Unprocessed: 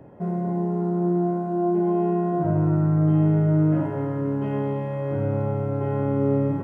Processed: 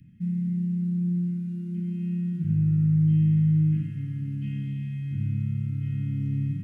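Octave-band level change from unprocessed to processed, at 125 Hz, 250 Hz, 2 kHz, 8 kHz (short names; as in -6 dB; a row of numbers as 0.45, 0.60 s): -0.5 dB, -4.0 dB, under -10 dB, n/a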